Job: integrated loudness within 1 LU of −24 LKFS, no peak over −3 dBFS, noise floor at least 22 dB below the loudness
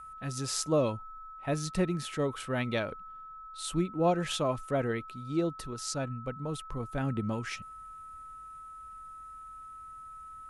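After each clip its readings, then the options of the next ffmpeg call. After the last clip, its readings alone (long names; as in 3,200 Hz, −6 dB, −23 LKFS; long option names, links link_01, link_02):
interfering tone 1,300 Hz; level of the tone −44 dBFS; integrated loudness −33.0 LKFS; sample peak −14.0 dBFS; target loudness −24.0 LKFS
→ -af "bandreject=frequency=1300:width=30"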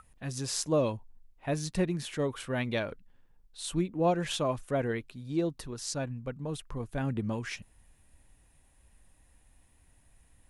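interfering tone none found; integrated loudness −33.0 LKFS; sample peak −14.0 dBFS; target loudness −24.0 LKFS
→ -af "volume=9dB"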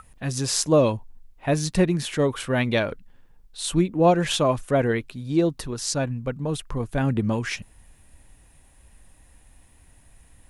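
integrated loudness −24.0 LKFS; sample peak −5.0 dBFS; background noise floor −55 dBFS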